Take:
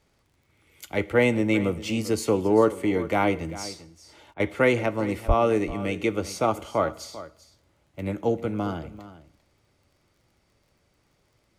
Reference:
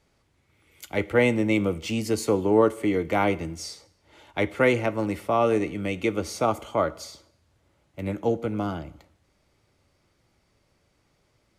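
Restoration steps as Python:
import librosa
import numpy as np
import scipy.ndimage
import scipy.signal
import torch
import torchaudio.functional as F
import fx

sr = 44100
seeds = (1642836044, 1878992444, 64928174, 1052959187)

y = fx.fix_declick_ar(x, sr, threshold=6.5)
y = fx.highpass(y, sr, hz=140.0, slope=24, at=(5.27, 5.39), fade=0.02)
y = fx.fix_interpolate(y, sr, at_s=(4.34,), length_ms=58.0)
y = fx.fix_echo_inverse(y, sr, delay_ms=393, level_db=-15.5)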